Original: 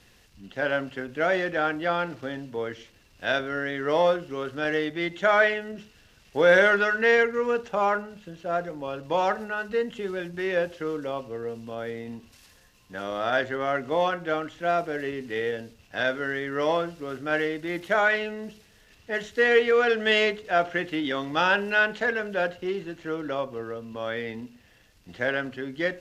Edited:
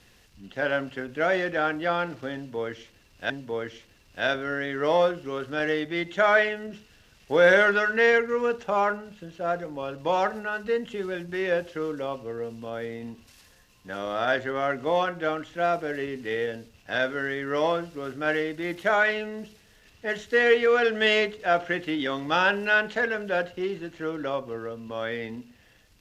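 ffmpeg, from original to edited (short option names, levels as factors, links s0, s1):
-filter_complex "[0:a]asplit=2[s0][s1];[s0]atrim=end=3.302[s2];[s1]atrim=start=2.348[s3];[s2][s3]acrossfade=d=0.004:c1=hsin:c2=hsin"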